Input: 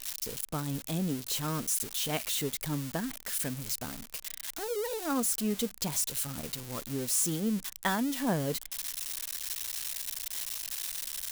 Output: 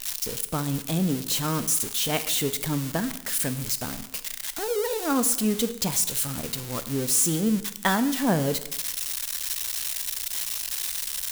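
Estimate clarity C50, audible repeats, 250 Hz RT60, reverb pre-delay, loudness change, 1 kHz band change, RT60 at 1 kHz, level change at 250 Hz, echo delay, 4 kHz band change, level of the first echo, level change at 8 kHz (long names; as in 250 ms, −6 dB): 14.0 dB, no echo audible, 0.95 s, 5 ms, +7.0 dB, +6.5 dB, 0.90 s, +7.0 dB, no echo audible, +6.5 dB, no echo audible, +7.0 dB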